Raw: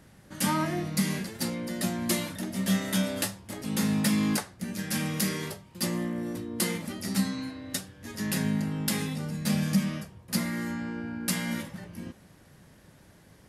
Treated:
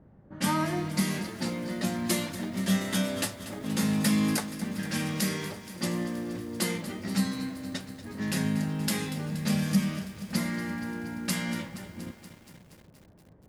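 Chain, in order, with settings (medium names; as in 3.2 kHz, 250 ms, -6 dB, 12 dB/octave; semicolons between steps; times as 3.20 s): level-controlled noise filter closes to 700 Hz, open at -24.5 dBFS; bit-crushed delay 237 ms, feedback 80%, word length 8-bit, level -14 dB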